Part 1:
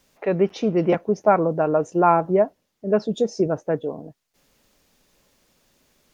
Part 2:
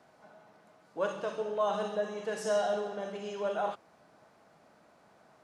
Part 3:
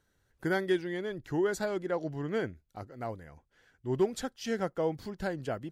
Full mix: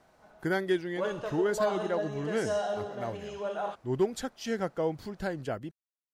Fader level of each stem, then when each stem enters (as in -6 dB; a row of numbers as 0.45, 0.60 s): off, -1.5 dB, +0.5 dB; off, 0.00 s, 0.00 s